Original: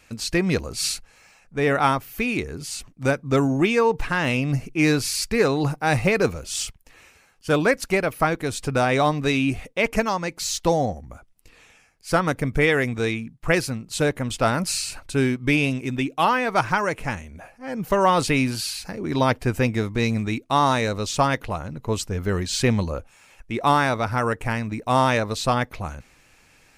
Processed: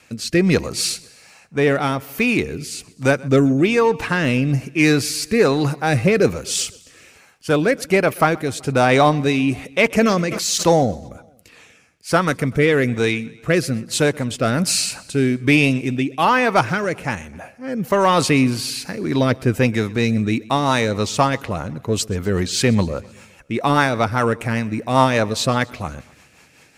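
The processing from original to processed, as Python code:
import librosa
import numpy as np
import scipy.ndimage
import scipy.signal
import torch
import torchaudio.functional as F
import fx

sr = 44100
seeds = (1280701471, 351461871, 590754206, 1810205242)

p1 = scipy.signal.sosfilt(scipy.signal.butter(2, 100.0, 'highpass', fs=sr, output='sos'), x)
p2 = 10.0 ** (-19.5 / 20.0) * np.tanh(p1 / 10.0 ** (-19.5 / 20.0))
p3 = p1 + (p2 * librosa.db_to_amplitude(-5.5))
p4 = fx.rotary_switch(p3, sr, hz=1.2, then_hz=5.0, switch_at_s=20.11)
p5 = p4 + fx.echo_feedback(p4, sr, ms=127, feedback_pct=59, wet_db=-23, dry=0)
p6 = fx.sustainer(p5, sr, db_per_s=31.0, at=(9.92, 10.84))
y = p6 * librosa.db_to_amplitude(4.0)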